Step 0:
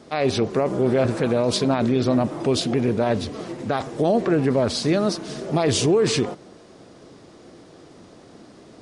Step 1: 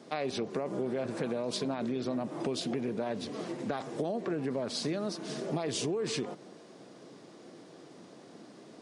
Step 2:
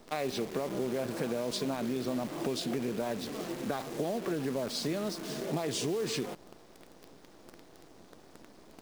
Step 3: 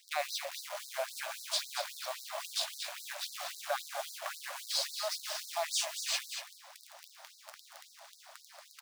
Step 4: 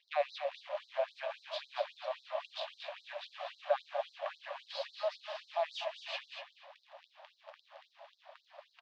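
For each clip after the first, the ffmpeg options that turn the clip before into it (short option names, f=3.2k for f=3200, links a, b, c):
-af "highpass=f=140:w=0.5412,highpass=f=140:w=1.3066,bandreject=f=1.3k:w=26,acompressor=threshold=-25dB:ratio=6,volume=-5dB"
-af "acrusher=bits=8:dc=4:mix=0:aa=0.000001"
-af "areverse,acompressor=mode=upward:threshold=-42dB:ratio=2.5,areverse,aecho=1:1:231:0.398,afftfilt=real='re*gte(b*sr/1024,520*pow(3900/520,0.5+0.5*sin(2*PI*3.7*pts/sr)))':imag='im*gte(b*sr/1024,520*pow(3900/520,0.5+0.5*sin(2*PI*3.7*pts/sr)))':win_size=1024:overlap=0.75,volume=4dB"
-filter_complex "[0:a]highpass=390,equalizer=f=570:t=q:w=4:g=8,equalizer=f=1.4k:t=q:w=4:g=-8,equalizer=f=2.1k:t=q:w=4:g=-6,lowpass=f=3.1k:w=0.5412,lowpass=f=3.1k:w=1.3066,asplit=2[a][b];[b]adelay=244.9,volume=-12dB,highshelf=f=4k:g=-5.51[c];[a][c]amix=inputs=2:normalize=0"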